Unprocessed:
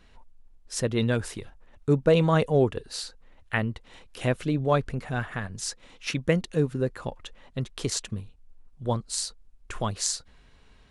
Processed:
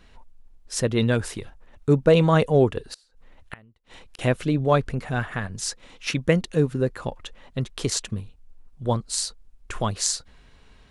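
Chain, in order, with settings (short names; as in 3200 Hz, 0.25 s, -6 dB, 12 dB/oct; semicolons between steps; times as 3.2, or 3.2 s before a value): 2.91–4.19 flipped gate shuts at -26 dBFS, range -29 dB; gain +3.5 dB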